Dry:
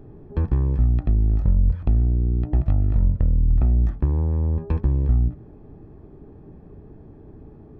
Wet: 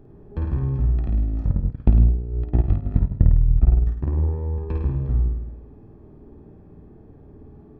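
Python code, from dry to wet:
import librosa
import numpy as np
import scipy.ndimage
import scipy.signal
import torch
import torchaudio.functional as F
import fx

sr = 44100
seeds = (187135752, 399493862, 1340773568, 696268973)

y = fx.room_flutter(x, sr, wall_m=9.0, rt60_s=0.95)
y = fx.transient(y, sr, attack_db=11, sustain_db=-12, at=(1.5, 4.09))
y = y * 10.0 ** (-4.5 / 20.0)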